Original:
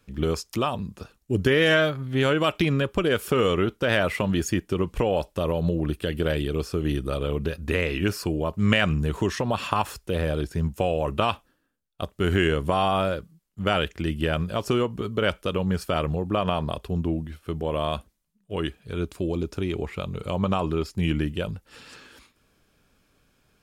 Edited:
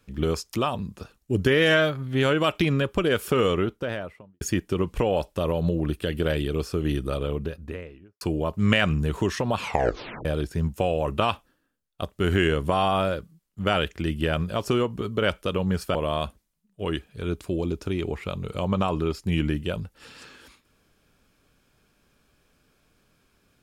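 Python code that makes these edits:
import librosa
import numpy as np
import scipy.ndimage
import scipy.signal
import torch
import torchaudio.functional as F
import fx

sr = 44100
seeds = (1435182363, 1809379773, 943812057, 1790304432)

y = fx.studio_fade_out(x, sr, start_s=3.38, length_s=1.03)
y = fx.studio_fade_out(y, sr, start_s=7.03, length_s=1.18)
y = fx.edit(y, sr, fx.tape_stop(start_s=9.57, length_s=0.68),
    fx.cut(start_s=15.95, length_s=1.71), tone=tone)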